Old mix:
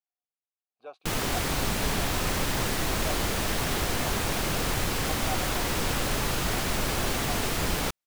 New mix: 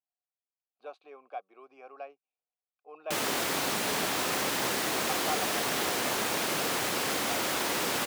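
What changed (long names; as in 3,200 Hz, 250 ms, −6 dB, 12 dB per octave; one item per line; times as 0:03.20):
background: entry +2.05 s
master: add high-pass filter 270 Hz 12 dB per octave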